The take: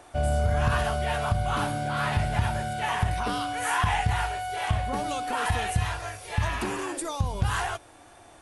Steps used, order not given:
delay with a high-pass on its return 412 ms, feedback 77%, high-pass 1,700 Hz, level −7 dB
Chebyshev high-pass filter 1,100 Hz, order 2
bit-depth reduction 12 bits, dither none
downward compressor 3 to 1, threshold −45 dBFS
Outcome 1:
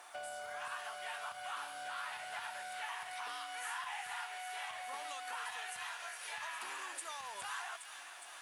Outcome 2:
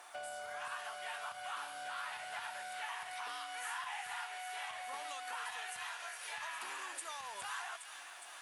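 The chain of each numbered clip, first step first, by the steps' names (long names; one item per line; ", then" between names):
Chebyshev high-pass filter, then downward compressor, then delay with a high-pass on its return, then bit-depth reduction
Chebyshev high-pass filter, then bit-depth reduction, then downward compressor, then delay with a high-pass on its return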